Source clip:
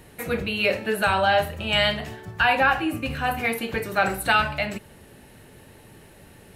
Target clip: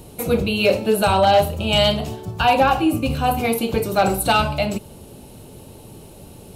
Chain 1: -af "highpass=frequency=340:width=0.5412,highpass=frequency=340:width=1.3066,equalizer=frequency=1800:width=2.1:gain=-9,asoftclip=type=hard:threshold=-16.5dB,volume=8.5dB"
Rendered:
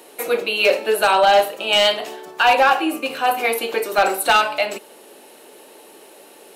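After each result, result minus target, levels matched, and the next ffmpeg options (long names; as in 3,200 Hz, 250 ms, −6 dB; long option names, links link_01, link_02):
250 Hz band −9.5 dB; 2,000 Hz band +4.5 dB
-af "equalizer=frequency=1800:width=2.1:gain=-9,asoftclip=type=hard:threshold=-16.5dB,volume=8.5dB"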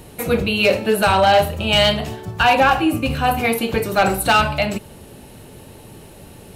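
2,000 Hz band +4.0 dB
-af "equalizer=frequency=1800:width=2.1:gain=-20.5,asoftclip=type=hard:threshold=-16.5dB,volume=8.5dB"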